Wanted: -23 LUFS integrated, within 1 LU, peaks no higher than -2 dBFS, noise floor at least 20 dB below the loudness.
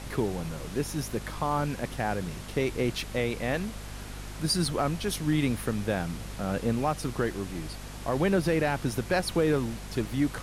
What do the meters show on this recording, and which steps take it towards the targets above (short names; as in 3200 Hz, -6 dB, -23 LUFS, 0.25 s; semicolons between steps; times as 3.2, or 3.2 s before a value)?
hum 50 Hz; harmonics up to 250 Hz; hum level -39 dBFS; noise floor -40 dBFS; noise floor target -50 dBFS; loudness -29.5 LUFS; peak -14.5 dBFS; loudness target -23.0 LUFS
-> de-hum 50 Hz, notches 5; noise print and reduce 10 dB; gain +6.5 dB